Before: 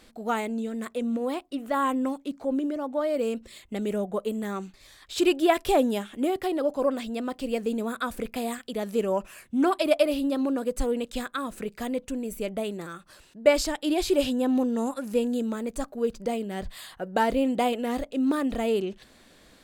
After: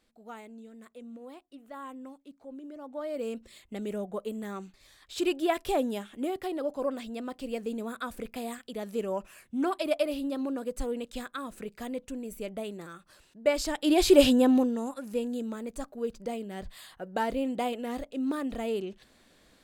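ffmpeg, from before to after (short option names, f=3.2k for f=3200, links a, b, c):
-af "volume=6dB,afade=t=in:st=2.6:d=0.74:silence=0.281838,afade=t=in:st=13.58:d=0.67:silence=0.251189,afade=t=out:st=14.25:d=0.55:silence=0.251189"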